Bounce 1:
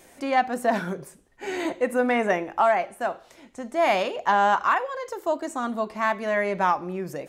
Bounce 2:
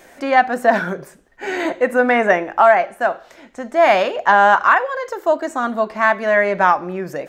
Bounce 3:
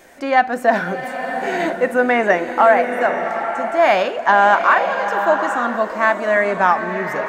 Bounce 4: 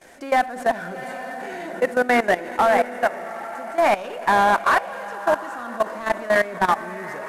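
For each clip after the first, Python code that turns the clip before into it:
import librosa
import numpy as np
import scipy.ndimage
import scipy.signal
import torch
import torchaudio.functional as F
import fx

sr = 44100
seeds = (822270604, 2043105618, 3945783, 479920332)

y1 = fx.graphic_eq_15(x, sr, hz=(100, 630, 1600, 10000), db=(-7, 4, 7, -7))
y1 = F.gain(torch.from_numpy(y1), 5.0).numpy()
y2 = fx.rev_bloom(y1, sr, seeds[0], attack_ms=910, drr_db=6.0)
y2 = F.gain(torch.from_numpy(y2), -1.0).numpy()
y3 = fx.cvsd(y2, sr, bps=64000)
y3 = fx.echo_wet_lowpass(y3, sr, ms=98, feedback_pct=69, hz=2900.0, wet_db=-16.5)
y3 = fx.level_steps(y3, sr, step_db=16)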